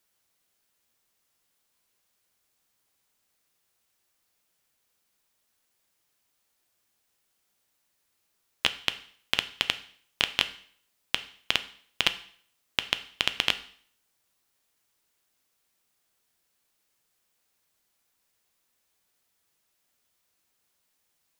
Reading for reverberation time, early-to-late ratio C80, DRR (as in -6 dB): 0.55 s, 18.5 dB, 10.5 dB